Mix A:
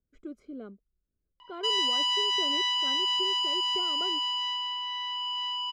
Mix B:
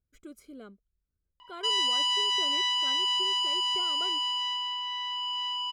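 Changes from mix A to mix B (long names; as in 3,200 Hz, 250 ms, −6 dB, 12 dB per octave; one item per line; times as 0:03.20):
speech: add spectral tilt +4 dB per octave
master: remove three-way crossover with the lows and the highs turned down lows −19 dB, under 200 Hz, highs −15 dB, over 7,800 Hz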